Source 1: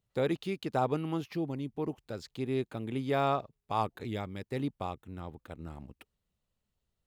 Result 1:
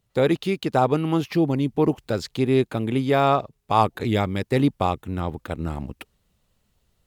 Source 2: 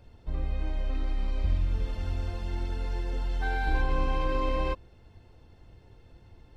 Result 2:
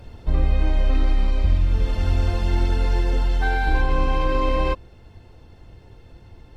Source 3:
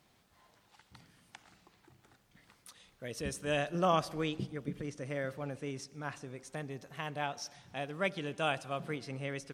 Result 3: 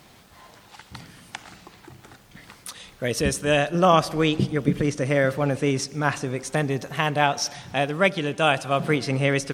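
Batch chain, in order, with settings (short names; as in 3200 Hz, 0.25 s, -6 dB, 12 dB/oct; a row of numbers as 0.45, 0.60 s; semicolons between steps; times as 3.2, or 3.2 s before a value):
vocal rider within 3 dB 0.5 s; MP3 112 kbps 48000 Hz; match loudness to -23 LUFS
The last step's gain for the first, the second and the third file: +12.5, +10.0, +15.0 dB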